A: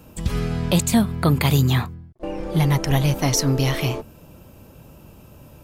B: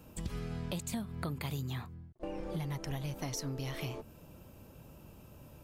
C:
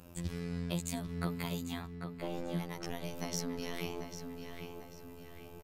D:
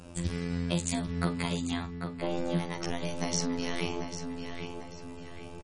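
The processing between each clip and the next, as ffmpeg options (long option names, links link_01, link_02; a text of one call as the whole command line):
ffmpeg -i in.wav -af "acompressor=threshold=-27dB:ratio=6,volume=-8.5dB" out.wav
ffmpeg -i in.wav -filter_complex "[0:a]afftfilt=real='hypot(re,im)*cos(PI*b)':imag='0':win_size=2048:overlap=0.75,asplit=2[link_01][link_02];[link_02]adelay=794,lowpass=frequency=4300:poles=1,volume=-6.5dB,asplit=2[link_03][link_04];[link_04]adelay=794,lowpass=frequency=4300:poles=1,volume=0.47,asplit=2[link_05][link_06];[link_06]adelay=794,lowpass=frequency=4300:poles=1,volume=0.47,asplit=2[link_07][link_08];[link_08]adelay=794,lowpass=frequency=4300:poles=1,volume=0.47,asplit=2[link_09][link_10];[link_10]adelay=794,lowpass=frequency=4300:poles=1,volume=0.47,asplit=2[link_11][link_12];[link_12]adelay=794,lowpass=frequency=4300:poles=1,volume=0.47[link_13];[link_01][link_03][link_05][link_07][link_09][link_11][link_13]amix=inputs=7:normalize=0,volume=4dB" out.wav
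ffmpeg -i in.wav -filter_complex "[0:a]asplit=2[link_01][link_02];[link_02]adelay=43,volume=-12dB[link_03];[link_01][link_03]amix=inputs=2:normalize=0,volume=7dB" -ar 48000 -c:a libmp3lame -b:a 40k out.mp3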